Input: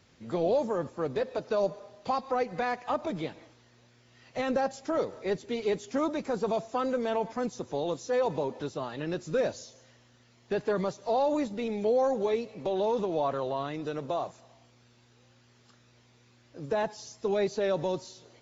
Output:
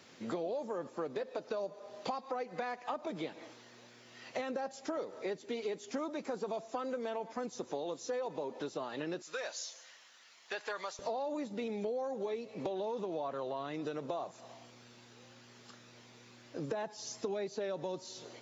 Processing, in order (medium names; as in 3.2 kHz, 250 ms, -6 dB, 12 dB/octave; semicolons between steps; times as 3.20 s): high-pass 230 Hz 12 dB/octave, from 9.22 s 1.1 kHz, from 10.99 s 170 Hz; compression 6:1, threshold -42 dBFS, peak gain reduction 18 dB; trim +6 dB